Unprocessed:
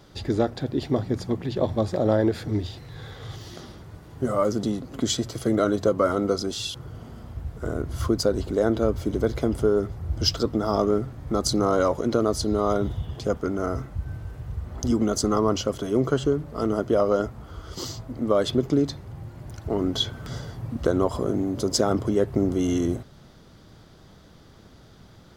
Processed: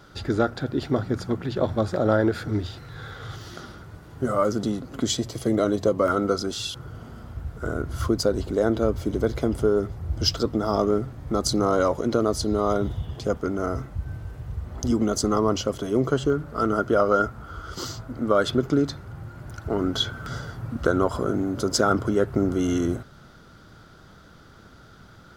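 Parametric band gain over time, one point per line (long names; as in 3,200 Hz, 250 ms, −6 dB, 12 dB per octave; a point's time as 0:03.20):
parametric band 1,400 Hz 0.32 octaves
+13 dB
from 0:03.85 +6.5 dB
from 0:05.06 −4.5 dB
from 0:06.08 +7.5 dB
from 0:08.04 +1.5 dB
from 0:16.30 +13 dB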